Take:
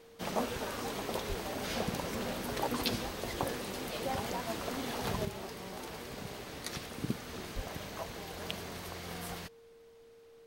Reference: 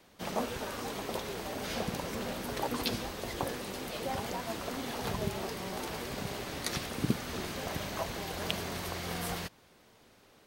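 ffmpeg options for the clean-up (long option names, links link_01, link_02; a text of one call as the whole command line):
ffmpeg -i in.wav -filter_complex "[0:a]bandreject=frequency=460:width=30,asplit=3[link_01][link_02][link_03];[link_01]afade=type=out:start_time=1.28:duration=0.02[link_04];[link_02]highpass=frequency=140:width=0.5412,highpass=frequency=140:width=1.3066,afade=type=in:start_time=1.28:duration=0.02,afade=type=out:start_time=1.4:duration=0.02[link_05];[link_03]afade=type=in:start_time=1.4:duration=0.02[link_06];[link_04][link_05][link_06]amix=inputs=3:normalize=0,asplit=3[link_07][link_08][link_09];[link_07]afade=type=out:start_time=7.55:duration=0.02[link_10];[link_08]highpass=frequency=140:width=0.5412,highpass=frequency=140:width=1.3066,afade=type=in:start_time=7.55:duration=0.02,afade=type=out:start_time=7.67:duration=0.02[link_11];[link_09]afade=type=in:start_time=7.67:duration=0.02[link_12];[link_10][link_11][link_12]amix=inputs=3:normalize=0,agate=range=-21dB:threshold=-49dB,asetnsamples=nb_out_samples=441:pad=0,asendcmd='5.25 volume volume 5.5dB',volume=0dB" out.wav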